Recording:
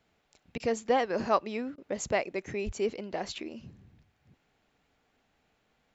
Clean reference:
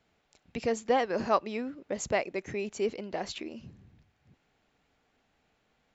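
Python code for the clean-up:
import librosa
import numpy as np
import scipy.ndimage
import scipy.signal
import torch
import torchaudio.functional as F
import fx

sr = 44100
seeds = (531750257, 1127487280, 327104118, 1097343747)

y = fx.highpass(x, sr, hz=140.0, slope=24, at=(2.65, 2.77), fade=0.02)
y = fx.fix_interpolate(y, sr, at_s=(0.58, 1.76), length_ms=18.0)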